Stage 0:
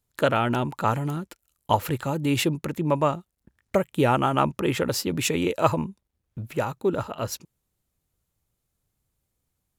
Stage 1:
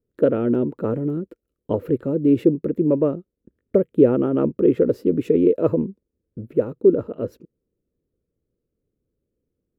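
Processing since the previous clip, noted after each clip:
drawn EQ curve 130 Hz 0 dB, 260 Hz +10 dB, 480 Hz +13 dB, 810 Hz −14 dB, 1,400 Hz −9 dB, 7,000 Hz −26 dB, 11,000 Hz −22 dB, 15,000 Hz −18 dB
level −2 dB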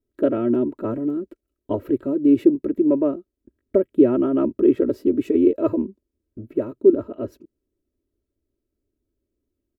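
comb filter 3.1 ms, depth 87%
level −3 dB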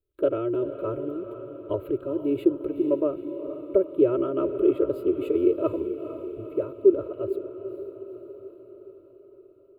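phaser with its sweep stopped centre 1,200 Hz, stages 8
feedback delay with all-pass diffusion 460 ms, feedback 59%, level −10.5 dB
level −1 dB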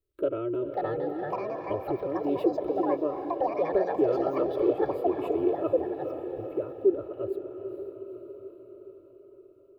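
in parallel at −1.5 dB: downward compressor, threshold −31 dBFS, peak gain reduction 18 dB
on the sum: delay with pitch and tempo change per echo 599 ms, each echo +5 semitones, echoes 2
level −6.5 dB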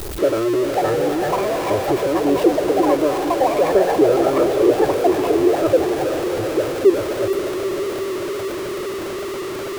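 converter with a step at zero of −30 dBFS
level +8.5 dB

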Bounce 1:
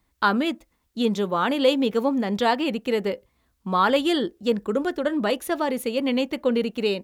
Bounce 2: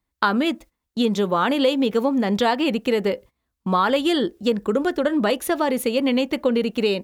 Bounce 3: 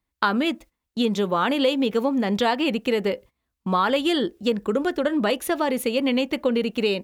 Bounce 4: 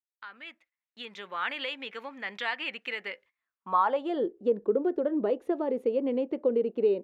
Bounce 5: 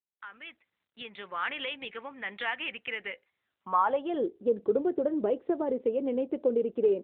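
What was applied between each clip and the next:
noise gate −45 dBFS, range −16 dB; downward compressor 3 to 1, threshold −23 dBFS, peak gain reduction 7.5 dB; level +6 dB
parametric band 2,600 Hz +2.5 dB; level −2 dB
fade in at the beginning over 1.45 s; band-pass filter sweep 2,000 Hz → 420 Hz, 0:03.33–0:04.32
AMR narrowband 12.2 kbit/s 8,000 Hz

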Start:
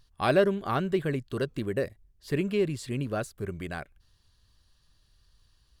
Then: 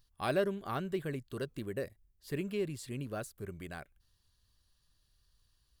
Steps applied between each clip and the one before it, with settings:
high-shelf EQ 9,900 Hz +12 dB
level −8.5 dB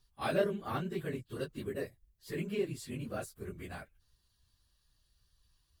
random phases in long frames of 50 ms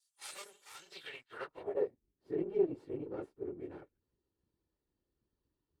lower of the sound and its delayed copy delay 2.2 ms
band-pass filter sweep 7,800 Hz → 320 Hz, 0:00.75–0:01.95
level +8.5 dB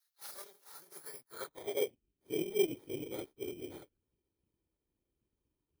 samples in bit-reversed order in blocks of 16 samples

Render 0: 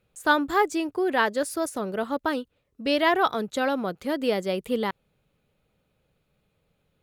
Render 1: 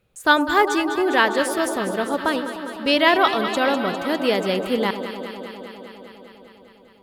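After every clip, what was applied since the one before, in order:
dynamic equaliser 3,000 Hz, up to +5 dB, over −37 dBFS, Q 0.79
delay that swaps between a low-pass and a high-pass 101 ms, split 950 Hz, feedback 87%, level −9 dB
level +3.5 dB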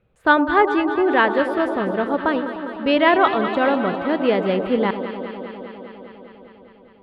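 high-frequency loss of the air 450 metres
level +3.5 dB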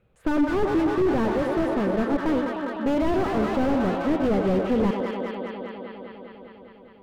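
slew-rate limiting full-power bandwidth 43 Hz

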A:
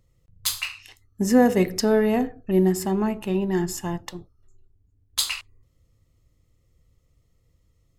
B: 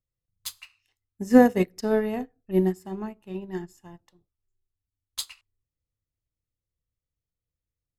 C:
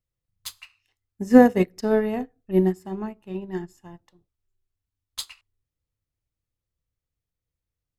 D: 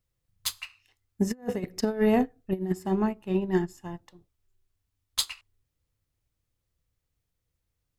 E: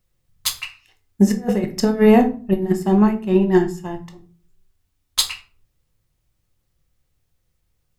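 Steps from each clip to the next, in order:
expander for the loud parts 2.5 to 1, over −32 dBFS; level +3.5 dB
high-shelf EQ 4,300 Hz −5 dB; level +2.5 dB
compressor whose output falls as the input rises −25 dBFS, ratio −0.5
rectangular room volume 300 cubic metres, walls furnished, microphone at 0.96 metres; level +8 dB

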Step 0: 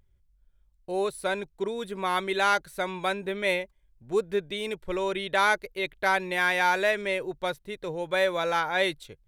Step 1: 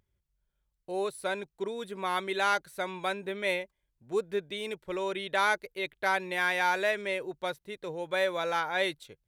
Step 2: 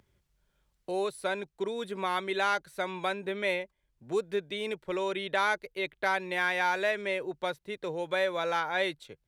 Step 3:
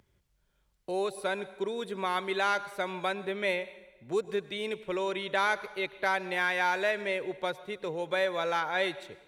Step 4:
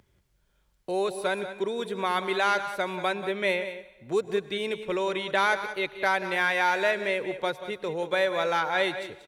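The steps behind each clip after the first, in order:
high-pass filter 140 Hz 6 dB per octave; level −3.5 dB
high-shelf EQ 9,300 Hz −8.5 dB; multiband upward and downward compressor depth 40%
dense smooth reverb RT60 1.1 s, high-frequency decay 0.9×, pre-delay 90 ms, DRR 16 dB
single-tap delay 185 ms −12 dB; level +3.5 dB

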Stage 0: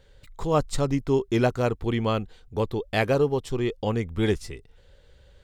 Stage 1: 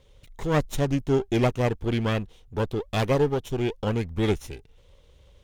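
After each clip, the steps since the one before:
lower of the sound and its delayed copy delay 0.31 ms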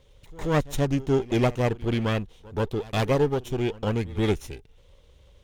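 echo ahead of the sound 131 ms −20.5 dB

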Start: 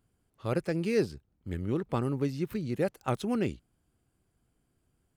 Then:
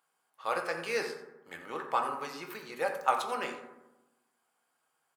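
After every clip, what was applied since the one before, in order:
high-pass with resonance 910 Hz, resonance Q 1.8
single-tap delay 87 ms −14.5 dB
on a send at −2.5 dB: convolution reverb RT60 1.0 s, pre-delay 3 ms
on the sum: level +2 dB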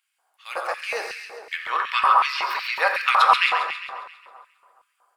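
gain on a spectral selection 0:01.53–0:03.66, 930–5,700 Hz +12 dB
echo with a time of its own for lows and highs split 1,200 Hz, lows 211 ms, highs 135 ms, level −5.5 dB
auto-filter high-pass square 2.7 Hz 690–2,400 Hz
level +2.5 dB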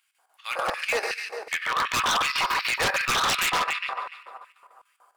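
in parallel at −2.5 dB: downward compressor, threshold −27 dBFS, peak gain reduction 15.5 dB
on the sum: square-wave tremolo 6.8 Hz, depth 65%, duty 75%
wave folding −18 dBFS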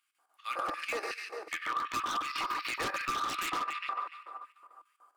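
hollow resonant body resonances 310/1,200 Hz, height 14 dB, ringing for 45 ms
downward compressor, threshold −22 dBFS, peak gain reduction 9 dB
level −8.5 dB

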